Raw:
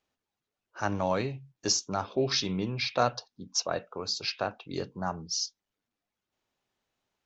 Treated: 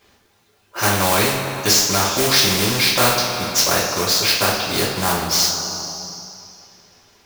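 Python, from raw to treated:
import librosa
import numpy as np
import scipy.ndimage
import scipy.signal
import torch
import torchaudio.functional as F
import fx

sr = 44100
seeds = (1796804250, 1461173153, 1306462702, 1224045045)

y = fx.quant_float(x, sr, bits=2)
y = fx.rev_double_slope(y, sr, seeds[0], early_s=0.36, late_s=2.3, knee_db=-18, drr_db=-7.5)
y = fx.spectral_comp(y, sr, ratio=2.0)
y = y * librosa.db_to_amplitude(6.0)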